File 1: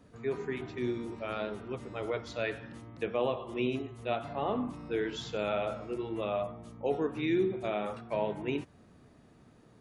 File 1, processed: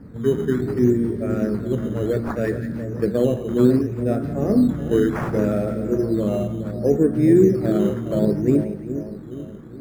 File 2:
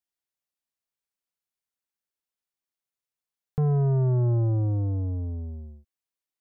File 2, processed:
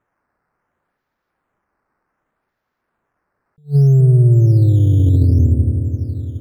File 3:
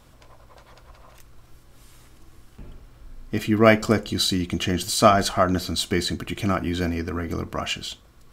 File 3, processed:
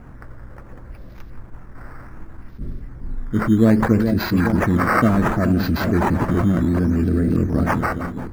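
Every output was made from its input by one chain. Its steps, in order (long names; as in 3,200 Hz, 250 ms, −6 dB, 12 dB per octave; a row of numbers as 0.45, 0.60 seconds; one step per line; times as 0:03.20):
drawn EQ curve 120 Hz 0 dB, 210 Hz +2 dB, 560 Hz −9 dB, 940 Hz −30 dB, 1,800 Hz −11 dB, 3,000 Hz −20 dB, 4,800 Hz +5 dB, 10,000 Hz −4 dB
on a send: echo with a time of its own for lows and highs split 1,000 Hz, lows 419 ms, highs 173 ms, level −10.5 dB
on the sum: sample-and-hold swept by an LFO 9×, swing 100% 0.66 Hz
in parallel at −1 dB: compressor whose output falls as the input rises −30 dBFS, ratio −0.5
on the sum: high shelf with overshoot 2,200 Hz −12.5 dB, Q 1.5
level that may rise only so fast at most 330 dB per second
normalise the peak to −3 dBFS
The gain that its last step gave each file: +13.0, +11.0, +5.0 decibels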